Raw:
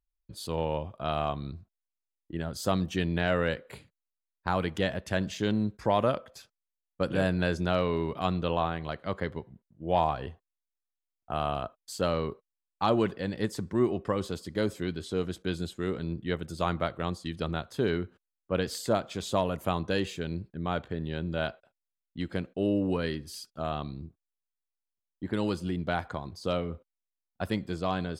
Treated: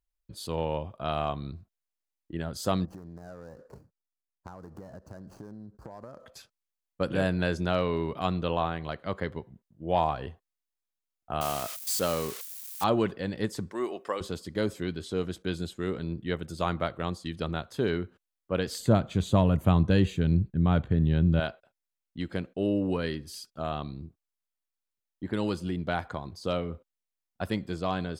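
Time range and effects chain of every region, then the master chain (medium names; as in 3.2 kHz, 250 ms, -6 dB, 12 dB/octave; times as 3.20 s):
2.85–6.26 s: median filter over 25 samples + high-order bell 2.8 kHz -15 dB 1.1 oct + compression 20:1, threshold -39 dBFS
11.41–12.84 s: zero-crossing glitches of -24.5 dBFS + bass shelf 88 Hz -11.5 dB
13.71–14.21 s: high-pass 470 Hz + treble shelf 4.7 kHz +7 dB
18.80–21.40 s: tone controls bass +14 dB, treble -3 dB + band-stop 5.2 kHz, Q 6
whole clip: none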